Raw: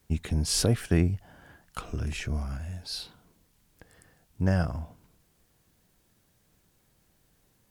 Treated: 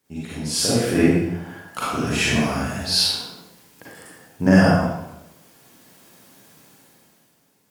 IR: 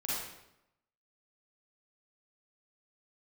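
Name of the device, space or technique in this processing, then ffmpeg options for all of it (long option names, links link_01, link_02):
far laptop microphone: -filter_complex "[1:a]atrim=start_sample=2205[link_01];[0:a][link_01]afir=irnorm=-1:irlink=0,highpass=190,dynaudnorm=framelen=110:gausssize=17:maxgain=15dB"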